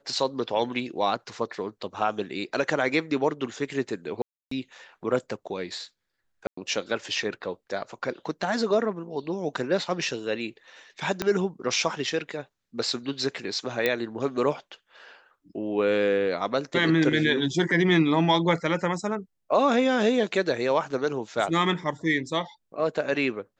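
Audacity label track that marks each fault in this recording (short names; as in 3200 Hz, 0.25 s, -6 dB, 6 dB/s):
4.220000	4.510000	gap 0.294 s
6.470000	6.570000	gap 0.104 s
11.220000	11.220000	pop -11 dBFS
13.860000	13.860000	pop -10 dBFS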